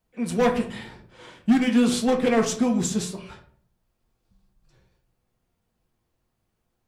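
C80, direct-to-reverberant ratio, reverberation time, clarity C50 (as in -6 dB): 14.5 dB, 2.0 dB, 0.50 s, 10.0 dB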